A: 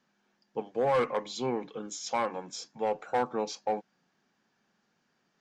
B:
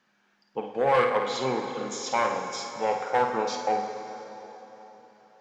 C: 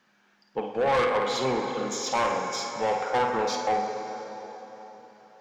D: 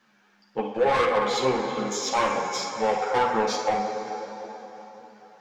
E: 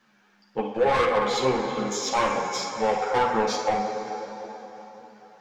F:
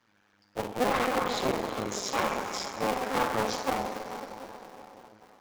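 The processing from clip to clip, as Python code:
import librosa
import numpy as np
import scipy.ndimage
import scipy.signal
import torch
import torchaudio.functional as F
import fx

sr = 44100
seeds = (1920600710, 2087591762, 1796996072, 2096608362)

y1 = fx.peak_eq(x, sr, hz=1800.0, db=7.0, octaves=2.6)
y1 = fx.room_flutter(y1, sr, wall_m=9.1, rt60_s=0.4)
y1 = fx.rev_plate(y1, sr, seeds[0], rt60_s=4.0, hf_ratio=0.8, predelay_ms=0, drr_db=5.5)
y2 = 10.0 ** (-22.5 / 20.0) * np.tanh(y1 / 10.0 ** (-22.5 / 20.0))
y2 = y2 * librosa.db_to_amplitude(3.5)
y3 = fx.ensemble(y2, sr)
y3 = y3 * librosa.db_to_amplitude(5.0)
y4 = fx.low_shelf(y3, sr, hz=110.0, db=5.5)
y5 = fx.cycle_switch(y4, sr, every=2, mode='muted')
y5 = y5 * librosa.db_to_amplitude(-2.5)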